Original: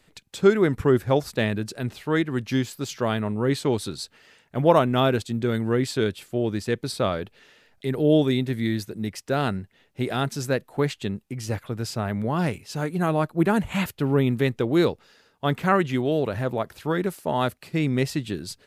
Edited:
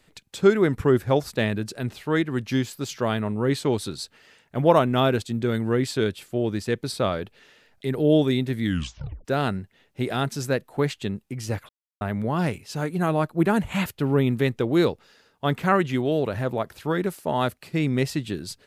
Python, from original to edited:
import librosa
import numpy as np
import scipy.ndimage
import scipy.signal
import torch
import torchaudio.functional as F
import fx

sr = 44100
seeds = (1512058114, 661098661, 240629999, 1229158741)

y = fx.edit(x, sr, fx.tape_stop(start_s=8.63, length_s=0.62),
    fx.silence(start_s=11.69, length_s=0.32), tone=tone)